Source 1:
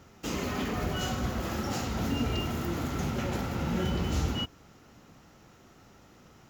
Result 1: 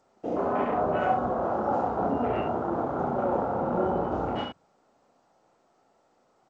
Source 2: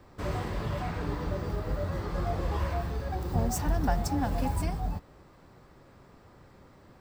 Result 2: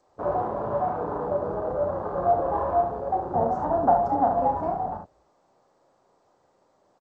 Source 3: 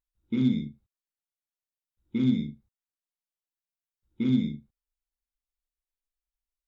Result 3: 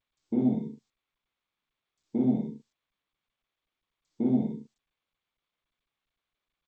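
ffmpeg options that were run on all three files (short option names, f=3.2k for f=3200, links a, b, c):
-filter_complex "[0:a]afwtdn=0.0158,acontrast=87,bandpass=f=700:t=q:w=1.8:csg=0,asplit=2[a][b];[b]aecho=0:1:33|70:0.473|0.473[c];[a][c]amix=inputs=2:normalize=0,volume=5.5dB" -ar 16000 -c:a g722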